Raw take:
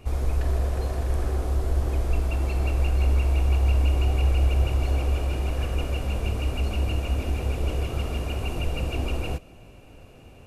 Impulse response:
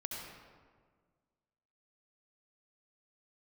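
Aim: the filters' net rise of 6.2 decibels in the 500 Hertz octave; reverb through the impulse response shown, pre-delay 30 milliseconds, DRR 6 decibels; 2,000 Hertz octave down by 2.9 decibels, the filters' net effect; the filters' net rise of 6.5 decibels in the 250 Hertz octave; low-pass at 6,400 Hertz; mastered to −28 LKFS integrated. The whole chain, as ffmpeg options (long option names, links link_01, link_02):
-filter_complex "[0:a]lowpass=6400,equalizer=frequency=250:width_type=o:gain=6.5,equalizer=frequency=500:width_type=o:gain=6,equalizer=frequency=2000:width_type=o:gain=-4.5,asplit=2[link_01][link_02];[1:a]atrim=start_sample=2205,adelay=30[link_03];[link_02][link_03]afir=irnorm=-1:irlink=0,volume=-6dB[link_04];[link_01][link_04]amix=inputs=2:normalize=0,volume=-6.5dB"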